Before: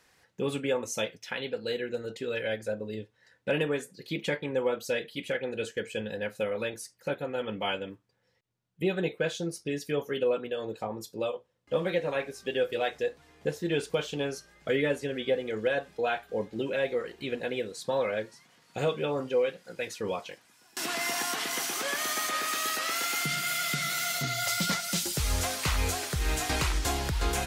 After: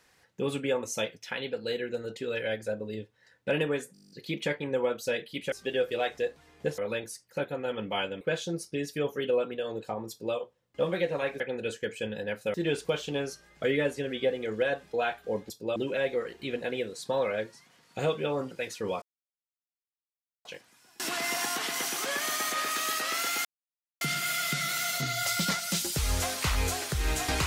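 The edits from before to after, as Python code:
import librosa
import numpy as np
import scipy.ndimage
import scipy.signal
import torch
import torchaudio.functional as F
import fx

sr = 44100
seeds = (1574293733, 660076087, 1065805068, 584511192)

y = fx.edit(x, sr, fx.stutter(start_s=3.93, slice_s=0.02, count=10),
    fx.swap(start_s=5.34, length_s=1.14, other_s=12.33, other_length_s=1.26),
    fx.cut(start_s=7.91, length_s=1.23),
    fx.duplicate(start_s=11.03, length_s=0.26, to_s=16.55),
    fx.cut(start_s=19.3, length_s=0.41),
    fx.insert_silence(at_s=20.22, length_s=1.43),
    fx.insert_silence(at_s=23.22, length_s=0.56), tone=tone)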